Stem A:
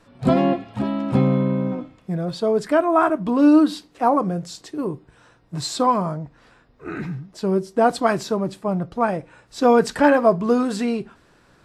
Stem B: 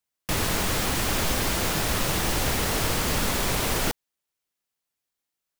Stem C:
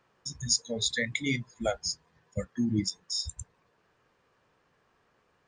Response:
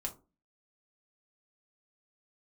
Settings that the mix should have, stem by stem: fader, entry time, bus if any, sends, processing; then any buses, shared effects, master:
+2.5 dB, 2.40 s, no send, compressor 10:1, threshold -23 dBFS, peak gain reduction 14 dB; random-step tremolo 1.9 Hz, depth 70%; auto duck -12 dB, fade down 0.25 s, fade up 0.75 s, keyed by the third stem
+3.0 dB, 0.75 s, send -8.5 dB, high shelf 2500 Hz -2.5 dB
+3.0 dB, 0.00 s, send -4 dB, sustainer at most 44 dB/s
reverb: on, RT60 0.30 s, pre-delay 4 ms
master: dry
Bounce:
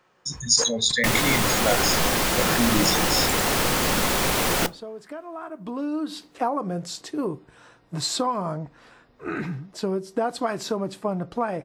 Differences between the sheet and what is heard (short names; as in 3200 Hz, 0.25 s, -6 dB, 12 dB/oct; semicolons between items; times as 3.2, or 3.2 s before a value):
stem A: missing random-step tremolo 1.9 Hz, depth 70%; master: extra low shelf 150 Hz -9 dB